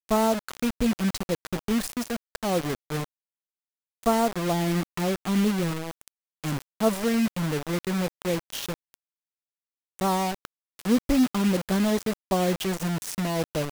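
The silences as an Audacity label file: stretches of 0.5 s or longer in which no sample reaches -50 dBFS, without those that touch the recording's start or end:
3.040000	4.030000	silence
8.940000	9.990000	silence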